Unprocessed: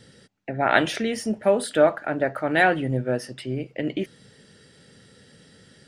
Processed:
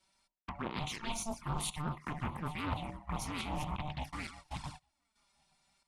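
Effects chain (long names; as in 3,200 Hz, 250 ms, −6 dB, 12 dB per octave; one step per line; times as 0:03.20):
feedback delay that plays each chunk backwards 427 ms, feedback 46%, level −12 dB
bass and treble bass −14 dB, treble +5 dB
mains-hum notches 60/120/180/240/300/360/420/480/540/600 Hz
in parallel at +2 dB: brickwall limiter −14 dBFS, peak gain reduction 11 dB
on the sum: square-wave tremolo 0.97 Hz, depth 65%, duty 65%
noise gate −37 dBFS, range −22 dB
reversed playback
downward compressor 8 to 1, threshold −29 dBFS, peak gain reduction 18.5 dB
reversed playback
ring modulation 450 Hz
flanger swept by the level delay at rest 5.4 ms, full sweep at −32 dBFS
highs frequency-modulated by the lows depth 0.51 ms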